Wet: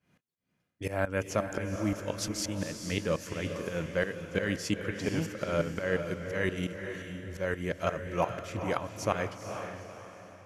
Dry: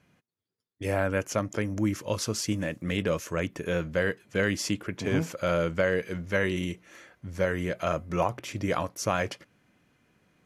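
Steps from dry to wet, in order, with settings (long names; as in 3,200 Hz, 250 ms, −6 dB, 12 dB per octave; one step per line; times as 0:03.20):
shaped tremolo saw up 5.7 Hz, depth 90%
feedback delay with all-pass diffusion 467 ms, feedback 41%, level −7 dB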